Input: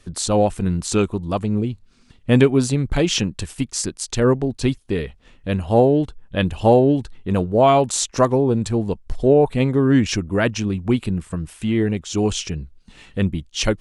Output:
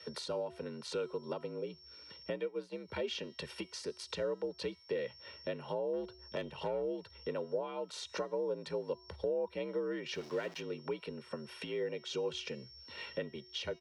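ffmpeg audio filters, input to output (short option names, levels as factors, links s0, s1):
-filter_complex "[0:a]aeval=exprs='val(0)+0.00447*sin(2*PI*5400*n/s)':c=same,equalizer=f=7300:t=o:w=0.54:g=-10.5,acompressor=threshold=0.0316:ratio=6,asettb=1/sr,asplit=3[s0][s1][s2];[s0]atrim=end=5.934[s3];[s1]atrim=start=5.93:end=6.82,asetpts=PTS-STARTPTS,afade=t=in:d=0.004:c=qsin,afade=t=out:st=0.886:d=0.004:c=qsin,aeval=exprs='0.075*(cos(1*acos(clip(val(0)/0.075,-1,1)))-cos(1*PI/2))+0.00841*(cos(4*acos(clip(val(0)/0.075,-1,1)))-cos(4*PI/2))':c=same[s4];[s2]atrim=start=6.816[s5];[s3][s4]acrossfade=d=0.004:c1=hsin:c2=qsin[s6];[s6][s5]acrossfade=d=0.004:c1=qsin:c2=hsin,bandreject=f=310.5:t=h:w=4,bandreject=f=621:t=h:w=4,bandreject=f=931.5:t=h:w=4,bandreject=f=1242:t=h:w=4,bandreject=f=1552.5:t=h:w=4,bandreject=f=1863:t=h:w=4,bandreject=f=2173.5:t=h:w=4,bandreject=f=2484:t=h:w=4,bandreject=f=2794.5:t=h:w=4,bandreject=f=3105:t=h:w=4,bandreject=f=3415.5:t=h:w=4,bandreject=f=3726:t=h:w=4,bandreject=f=4036.5:t=h:w=4,bandreject=f=4347:t=h:w=4,bandreject=f=4657.5:t=h:w=4,bandreject=f=4968:t=h:w=4,bandreject=f=5278.5:t=h:w=4,bandreject=f=5589:t=h:w=4,bandreject=f=5899.5:t=h:w=4,bandreject=f=6210:t=h:w=4,bandreject=f=6520.5:t=h:w=4,bandreject=f=6831:t=h:w=4,bandreject=f=7141.5:t=h:w=4,bandreject=f=7452:t=h:w=4,bandreject=f=7762.5:t=h:w=4,bandreject=f=8073:t=h:w=4,bandreject=f=8383.5:t=h:w=4,bandreject=f=8694:t=h:w=4,bandreject=f=9004.5:t=h:w=4,bandreject=f=9315:t=h:w=4,bandreject=f=9625.5:t=h:w=4,bandreject=f=9936:t=h:w=4,bandreject=f=10246.5:t=h:w=4,bandreject=f=10557:t=h:w=4,acrossover=split=350[s7][s8];[s8]acompressor=threshold=0.0126:ratio=6[s9];[s7][s9]amix=inputs=2:normalize=0,aecho=1:1:2.2:0.74,asplit=3[s10][s11][s12];[s10]afade=t=out:st=2.31:d=0.02[s13];[s11]agate=range=0.0224:threshold=0.0398:ratio=3:detection=peak,afade=t=in:st=2.31:d=0.02,afade=t=out:st=2.87:d=0.02[s14];[s12]afade=t=in:st=2.87:d=0.02[s15];[s13][s14][s15]amix=inputs=3:normalize=0,asplit=3[s16][s17][s18];[s16]afade=t=out:st=10.14:d=0.02[s19];[s17]aeval=exprs='val(0)*gte(abs(val(0)),0.0075)':c=same,afade=t=in:st=10.14:d=0.02,afade=t=out:st=10.6:d=0.02[s20];[s18]afade=t=in:st=10.6:d=0.02[s21];[s19][s20][s21]amix=inputs=3:normalize=0,afreqshift=58,acrossover=split=280 5400:gain=0.0708 1 0.158[s22][s23][s24];[s22][s23][s24]amix=inputs=3:normalize=0,volume=0.891"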